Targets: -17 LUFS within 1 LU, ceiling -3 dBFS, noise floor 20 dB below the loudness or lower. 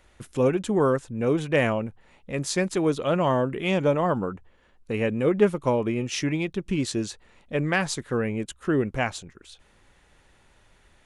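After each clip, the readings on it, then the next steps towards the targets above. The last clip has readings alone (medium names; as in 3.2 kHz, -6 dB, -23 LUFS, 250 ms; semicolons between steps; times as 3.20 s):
loudness -25.5 LUFS; peak level -7.5 dBFS; loudness target -17.0 LUFS
-> trim +8.5 dB; peak limiter -3 dBFS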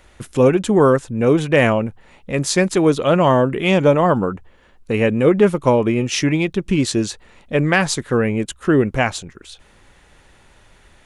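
loudness -17.0 LUFS; peak level -3.0 dBFS; noise floor -51 dBFS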